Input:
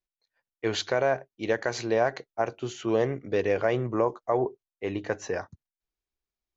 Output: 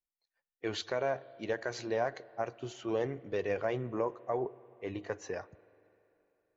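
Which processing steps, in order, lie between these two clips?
coarse spectral quantiser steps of 15 dB; spring tank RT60 3.2 s, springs 38/48 ms, chirp 40 ms, DRR 20 dB; trim -7.5 dB

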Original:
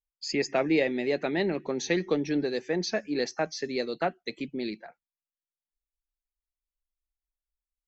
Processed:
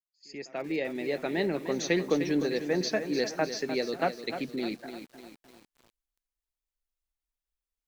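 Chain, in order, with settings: fade-in on the opening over 1.75 s; pre-echo 86 ms -21 dB; bit-crushed delay 302 ms, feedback 55%, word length 8-bit, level -9.5 dB

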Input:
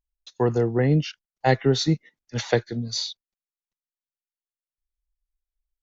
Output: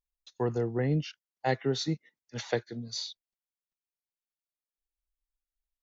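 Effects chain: 1.06–3.10 s: high-pass 130 Hz 6 dB/octave; trim -8 dB

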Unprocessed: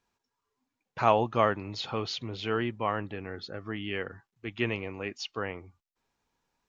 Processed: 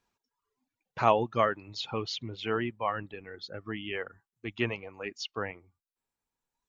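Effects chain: reverb removal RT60 1.8 s

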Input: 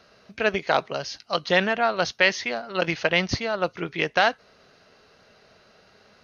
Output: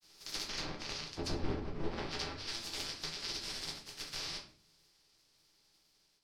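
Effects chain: spectral contrast reduction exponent 0.11; Doppler pass-by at 1.34 s, 18 m/s, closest 1.7 m; low-pass that closes with the level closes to 790 Hz, closed at -32 dBFS; peaking EQ 5.2 kHz +12.5 dB 0.82 oct; compression 5:1, threshold -51 dBFS, peak gain reduction 18.5 dB; granulator, pitch spread up and down by 0 st; frequency shift -450 Hz; simulated room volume 42 m³, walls mixed, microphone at 0.75 m; trim +11 dB

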